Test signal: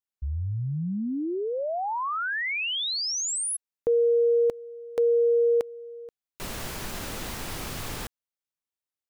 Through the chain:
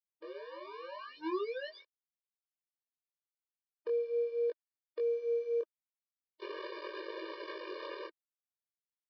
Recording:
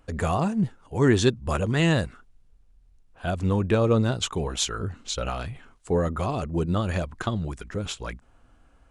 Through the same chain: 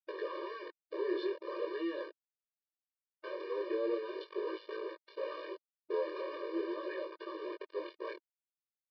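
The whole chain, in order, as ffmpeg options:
-filter_complex "[0:a]asplit=2[a][b];[b]asoftclip=type=tanh:threshold=-25dB,volume=-4dB[c];[a][c]amix=inputs=2:normalize=0,highshelf=f=3.2k:g=-9,acrossover=split=210[d][e];[e]acompressor=threshold=-34dB:ratio=5:attack=0.31:release=64:knee=2.83:detection=peak[f];[d][f]amix=inputs=2:normalize=0,aeval=exprs='val(0)*gte(abs(val(0)),0.0266)':c=same,tiltshelf=f=1.3k:g=4,flanger=delay=18:depth=7:speed=0.42,aresample=11025,aresample=44100,afftfilt=real='re*eq(mod(floor(b*sr/1024/310),2),1)':imag='im*eq(mod(floor(b*sr/1024/310),2),1)':win_size=1024:overlap=0.75,volume=1dB"

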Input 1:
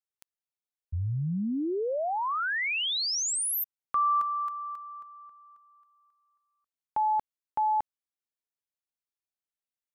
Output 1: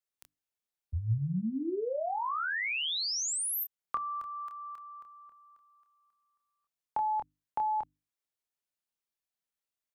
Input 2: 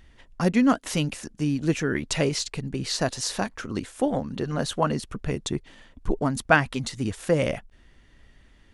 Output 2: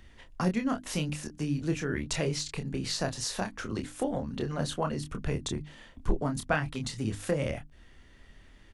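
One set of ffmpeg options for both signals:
-filter_complex "[0:a]acrossover=split=130[a][b];[b]acompressor=threshold=-36dB:ratio=2:attack=28:release=563:knee=2.83:detection=peak[c];[a][c]amix=inputs=2:normalize=0,bandreject=f=50:t=h:w=6,bandreject=f=100:t=h:w=6,bandreject=f=150:t=h:w=6,bandreject=f=200:t=h:w=6,bandreject=f=250:t=h:w=6,bandreject=f=300:t=h:w=6,asplit=2[d][e];[e]adelay=27,volume=-6dB[f];[d][f]amix=inputs=2:normalize=0"

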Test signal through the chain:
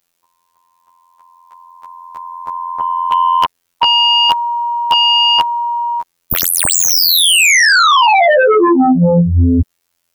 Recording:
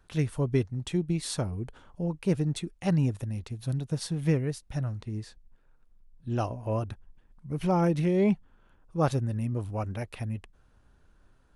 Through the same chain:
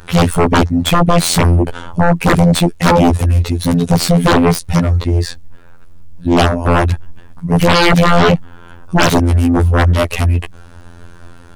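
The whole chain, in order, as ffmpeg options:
-af "afftfilt=real='hypot(re,im)*cos(PI*b)':imag='0':win_size=2048:overlap=0.75,aeval=exprs='0.266*sin(PI/2*10*val(0)/0.266)':c=same,volume=5.5dB"

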